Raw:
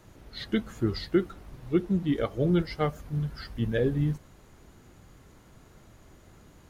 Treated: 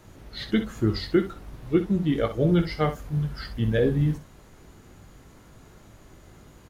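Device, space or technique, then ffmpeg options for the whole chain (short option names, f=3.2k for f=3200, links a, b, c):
slapback doubling: -filter_complex "[0:a]asplit=3[a][b][c];[b]adelay=19,volume=-8.5dB[d];[c]adelay=63,volume=-11dB[e];[a][d][e]amix=inputs=3:normalize=0,volume=3dB"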